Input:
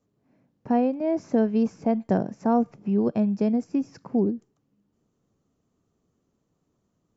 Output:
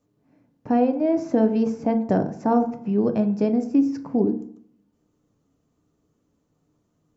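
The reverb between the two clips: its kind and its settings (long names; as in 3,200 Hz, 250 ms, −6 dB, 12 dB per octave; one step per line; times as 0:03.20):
feedback delay network reverb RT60 0.62 s, low-frequency decay 1.1×, high-frequency decay 0.4×, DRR 6.5 dB
level +2 dB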